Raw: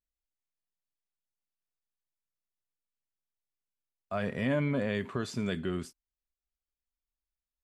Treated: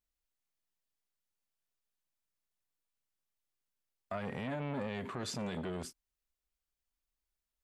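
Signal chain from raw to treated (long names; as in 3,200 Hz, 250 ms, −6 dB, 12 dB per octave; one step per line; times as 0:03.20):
brickwall limiter −28.5 dBFS, peak gain reduction 10.5 dB
saturating transformer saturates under 550 Hz
level +2.5 dB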